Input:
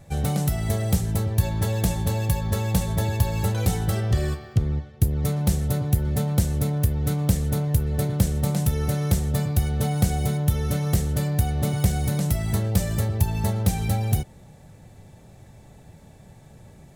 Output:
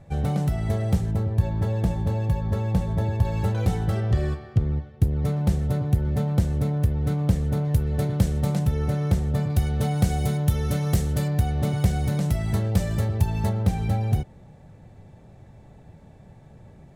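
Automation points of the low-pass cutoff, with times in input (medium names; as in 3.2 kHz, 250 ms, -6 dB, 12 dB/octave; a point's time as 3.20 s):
low-pass 6 dB/octave
1.8 kHz
from 1.11 s 1 kHz
from 3.25 s 1.9 kHz
from 7.65 s 3.7 kHz
from 8.59 s 1.9 kHz
from 9.50 s 4.9 kHz
from 10.10 s 8.1 kHz
from 11.28 s 3.6 kHz
from 13.49 s 1.8 kHz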